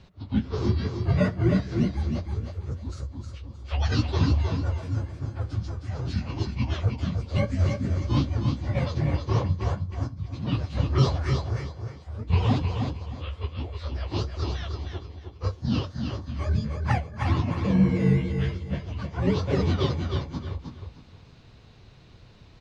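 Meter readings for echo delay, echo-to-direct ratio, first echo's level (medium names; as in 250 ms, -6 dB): 312 ms, -5.0 dB, -5.5 dB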